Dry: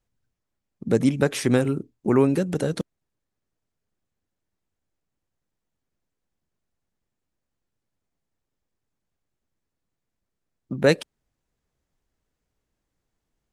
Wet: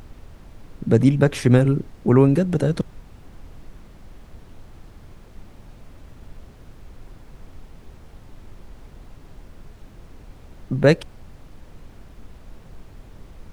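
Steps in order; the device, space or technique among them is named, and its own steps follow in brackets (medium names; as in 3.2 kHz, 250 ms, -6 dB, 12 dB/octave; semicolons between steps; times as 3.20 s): car interior (peaking EQ 120 Hz +8 dB 0.86 oct; treble shelf 4.1 kHz -7.5 dB; brown noise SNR 15 dB); trim +2.5 dB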